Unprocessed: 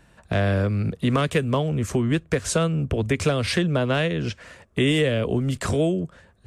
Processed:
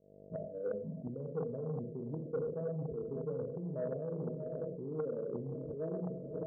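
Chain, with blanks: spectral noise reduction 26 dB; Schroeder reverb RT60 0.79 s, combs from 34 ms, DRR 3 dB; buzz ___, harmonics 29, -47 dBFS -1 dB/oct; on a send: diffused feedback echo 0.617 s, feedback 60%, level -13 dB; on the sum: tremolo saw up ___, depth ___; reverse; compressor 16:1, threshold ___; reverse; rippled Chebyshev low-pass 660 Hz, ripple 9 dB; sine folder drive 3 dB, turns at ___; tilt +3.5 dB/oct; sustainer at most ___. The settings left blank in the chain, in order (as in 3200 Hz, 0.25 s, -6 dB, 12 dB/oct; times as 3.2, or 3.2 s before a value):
50 Hz, 2.8 Hz, 85%, -31 dBFS, -24 dBFS, 62 dB/s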